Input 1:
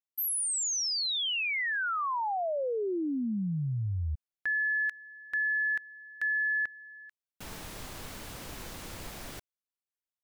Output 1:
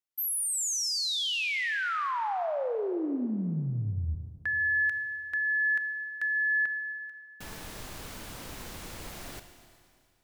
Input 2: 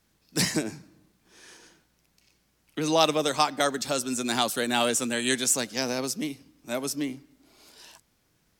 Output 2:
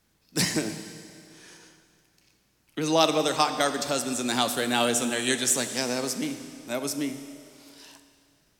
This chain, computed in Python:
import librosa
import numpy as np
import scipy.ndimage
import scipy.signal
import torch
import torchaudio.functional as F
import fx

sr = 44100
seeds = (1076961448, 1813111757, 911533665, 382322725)

y = fx.rev_schroeder(x, sr, rt60_s=2.3, comb_ms=25, drr_db=8.5)